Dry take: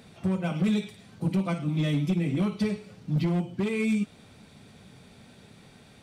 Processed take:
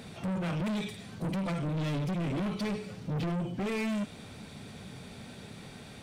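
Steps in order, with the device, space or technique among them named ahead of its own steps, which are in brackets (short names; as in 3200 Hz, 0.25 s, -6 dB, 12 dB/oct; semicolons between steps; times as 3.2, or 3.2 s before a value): saturation between pre-emphasis and de-emphasis (high shelf 6000 Hz +11 dB; soft clip -36 dBFS, distortion -5 dB; high shelf 6000 Hz -11 dB); gain +6 dB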